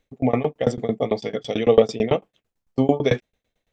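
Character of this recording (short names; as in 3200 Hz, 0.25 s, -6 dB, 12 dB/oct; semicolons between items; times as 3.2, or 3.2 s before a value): tremolo saw down 9 Hz, depth 100%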